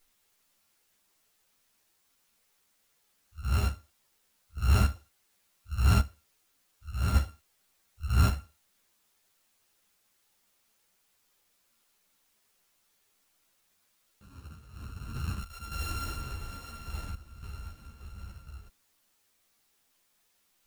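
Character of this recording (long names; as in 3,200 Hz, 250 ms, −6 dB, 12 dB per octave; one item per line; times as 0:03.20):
a buzz of ramps at a fixed pitch in blocks of 32 samples
sample-and-hold tremolo, depth 80%
a quantiser's noise floor 12 bits, dither triangular
a shimmering, thickened sound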